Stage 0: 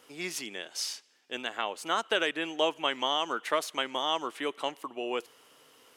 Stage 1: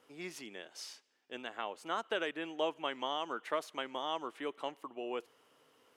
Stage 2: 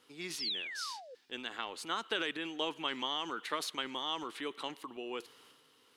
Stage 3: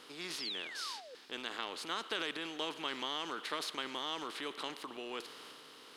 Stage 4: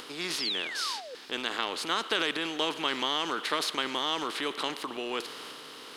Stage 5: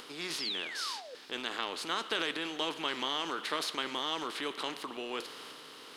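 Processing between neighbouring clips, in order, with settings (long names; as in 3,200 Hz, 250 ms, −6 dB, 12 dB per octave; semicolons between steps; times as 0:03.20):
high-shelf EQ 2,500 Hz −9 dB; level −5.5 dB
sound drawn into the spectrogram fall, 0:00.39–0:01.15, 470–5,600 Hz −44 dBFS; transient designer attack +2 dB, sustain +7 dB; graphic EQ with 15 bands 630 Hz −9 dB, 4,000 Hz +9 dB, 10,000 Hz +4 dB
compressor on every frequency bin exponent 0.6; level −5.5 dB
upward compression, threshold −51 dBFS; level +9 dB
flanger 0.7 Hz, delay 4.7 ms, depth 8.6 ms, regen −80%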